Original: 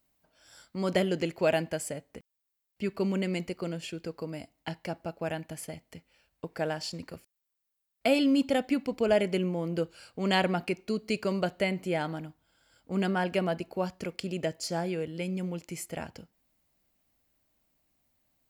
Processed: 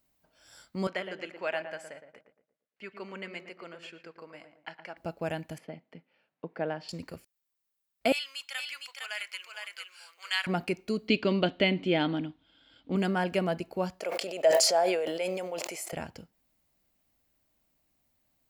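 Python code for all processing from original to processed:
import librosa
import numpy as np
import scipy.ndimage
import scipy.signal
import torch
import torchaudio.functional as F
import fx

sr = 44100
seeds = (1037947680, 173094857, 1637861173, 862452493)

y = fx.chain(x, sr, fx.bandpass_q(hz=1600.0, q=1.1),
    fx.echo_filtered(ms=115, feedback_pct=41, hz=1300.0, wet_db=-7), at=(0.87, 4.97))
y = fx.chain(y, sr, fx.highpass(hz=160.0, slope=24),
    fx.air_absorb(metres=350.0), at=(5.58, 6.89))
y = fx.chain(y, sr, fx.highpass(hz=1300.0, slope=24),
    fx.echo_single(ms=459, db=-4.5), at=(8.12, 10.47))
y = fx.chain(y, sr, fx.lowpass_res(hz=3400.0, q=3.7),
    fx.peak_eq(hz=280.0, db=12.5, octaves=0.55), at=(11.08, 12.96))
y = fx.chain(y, sr, fx.highpass_res(hz=630.0, q=3.4),
    fx.sustainer(db_per_s=30.0), at=(14.0, 15.93))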